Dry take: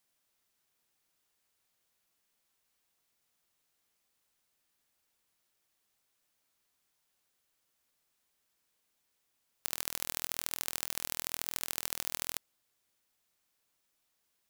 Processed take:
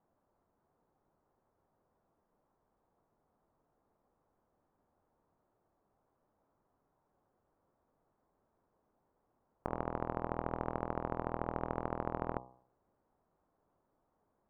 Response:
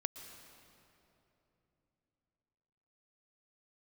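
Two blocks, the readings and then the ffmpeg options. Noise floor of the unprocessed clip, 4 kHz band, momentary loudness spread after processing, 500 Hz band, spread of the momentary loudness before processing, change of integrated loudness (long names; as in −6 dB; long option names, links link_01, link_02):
−79 dBFS, below −30 dB, 3 LU, +13.0 dB, 3 LU, −4.0 dB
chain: -af "lowpass=frequency=1000:width=0.5412,lowpass=frequency=1000:width=1.3066,bandreject=frequency=63.13:width_type=h:width=4,bandreject=frequency=126.26:width_type=h:width=4,bandreject=frequency=189.39:width_type=h:width=4,bandreject=frequency=252.52:width_type=h:width=4,bandreject=frequency=315.65:width_type=h:width=4,bandreject=frequency=378.78:width_type=h:width=4,bandreject=frequency=441.91:width_type=h:width=4,bandreject=frequency=505.04:width_type=h:width=4,bandreject=frequency=568.17:width_type=h:width=4,bandreject=frequency=631.3:width_type=h:width=4,bandreject=frequency=694.43:width_type=h:width=4,bandreject=frequency=757.56:width_type=h:width=4,bandreject=frequency=820.69:width_type=h:width=4,bandreject=frequency=883.82:width_type=h:width=4,bandreject=frequency=946.95:width_type=h:width=4,bandreject=frequency=1010.08:width_type=h:width=4,bandreject=frequency=1073.21:width_type=h:width=4,bandreject=frequency=1136.34:width_type=h:width=4,bandreject=frequency=1199.47:width_type=h:width=4,volume=13.5dB"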